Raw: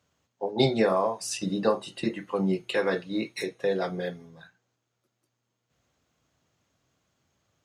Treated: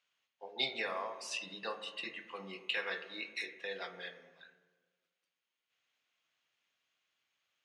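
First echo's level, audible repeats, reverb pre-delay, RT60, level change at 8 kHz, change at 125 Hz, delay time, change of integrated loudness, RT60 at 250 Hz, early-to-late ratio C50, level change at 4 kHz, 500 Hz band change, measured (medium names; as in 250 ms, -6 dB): no echo, no echo, 4 ms, 1.3 s, -12.0 dB, under -25 dB, no echo, -11.5 dB, 1.7 s, 11.0 dB, -3.5 dB, -18.0 dB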